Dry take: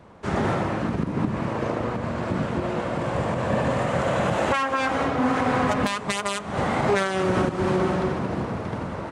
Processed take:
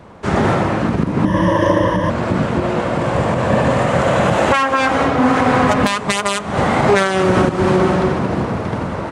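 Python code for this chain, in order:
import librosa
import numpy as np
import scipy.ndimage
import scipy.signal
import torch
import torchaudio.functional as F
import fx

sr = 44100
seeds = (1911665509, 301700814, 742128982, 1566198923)

y = fx.ripple_eq(x, sr, per_octave=1.2, db=18, at=(1.25, 2.1))
y = y * 10.0 ** (8.5 / 20.0)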